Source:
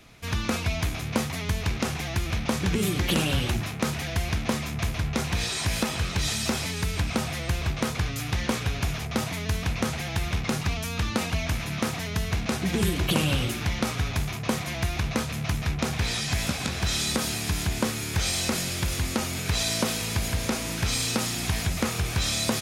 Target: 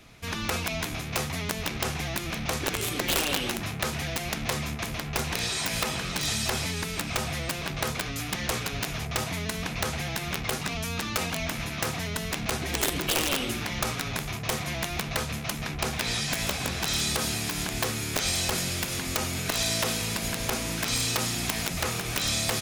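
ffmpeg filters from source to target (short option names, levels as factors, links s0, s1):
-af "aeval=exprs='(mod(6.31*val(0)+1,2)-1)/6.31':c=same,afftfilt=real='re*lt(hypot(re,im),0.282)':imag='im*lt(hypot(re,im),0.282)':win_size=1024:overlap=0.75"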